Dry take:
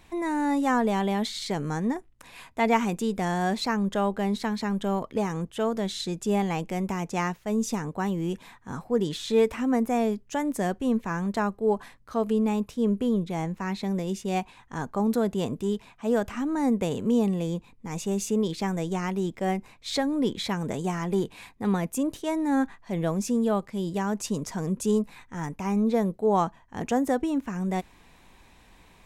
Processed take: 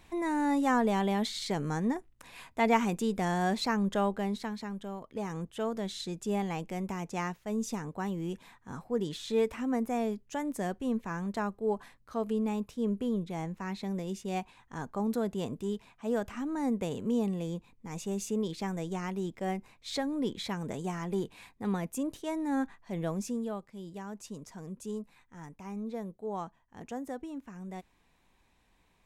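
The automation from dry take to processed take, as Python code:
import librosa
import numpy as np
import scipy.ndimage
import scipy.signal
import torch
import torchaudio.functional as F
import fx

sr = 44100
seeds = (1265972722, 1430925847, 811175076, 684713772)

y = fx.gain(x, sr, db=fx.line((4.02, -3.0), (4.99, -14.0), (5.33, -6.5), (23.19, -6.5), (23.64, -14.0)))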